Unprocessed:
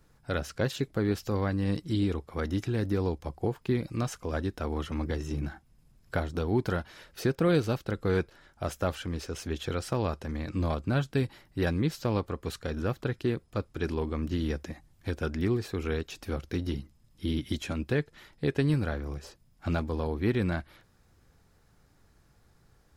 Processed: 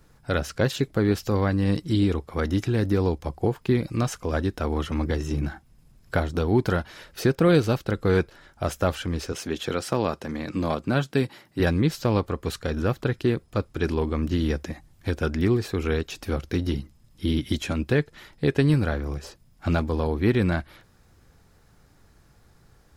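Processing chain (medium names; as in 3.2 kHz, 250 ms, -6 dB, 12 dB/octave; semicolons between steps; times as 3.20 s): 9.32–11.60 s: high-pass 150 Hz 12 dB/octave; trim +6 dB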